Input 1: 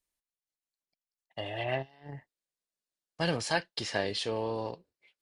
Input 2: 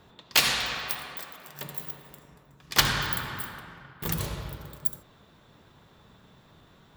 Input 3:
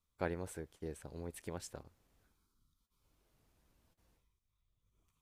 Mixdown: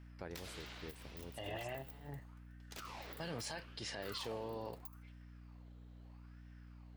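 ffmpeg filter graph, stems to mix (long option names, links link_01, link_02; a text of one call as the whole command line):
ffmpeg -i stem1.wav -i stem2.wav -i stem3.wav -filter_complex "[0:a]alimiter=level_in=1dB:limit=-24dB:level=0:latency=1:release=75,volume=-1dB,volume=-5dB[link_01];[1:a]acrossover=split=120[link_02][link_03];[link_03]acompressor=threshold=-33dB:ratio=4[link_04];[link_02][link_04]amix=inputs=2:normalize=0,aeval=exprs='val(0)*sin(2*PI*1000*n/s+1000*0.7/0.77*sin(2*PI*0.77*n/s))':channel_layout=same,volume=-13dB[link_05];[2:a]volume=-7dB[link_06];[link_01][link_05][link_06]amix=inputs=3:normalize=0,aeval=exprs='val(0)+0.002*(sin(2*PI*60*n/s)+sin(2*PI*2*60*n/s)/2+sin(2*PI*3*60*n/s)/3+sin(2*PI*4*60*n/s)/4+sin(2*PI*5*60*n/s)/5)':channel_layout=same,alimiter=level_in=9dB:limit=-24dB:level=0:latency=1:release=110,volume=-9dB" out.wav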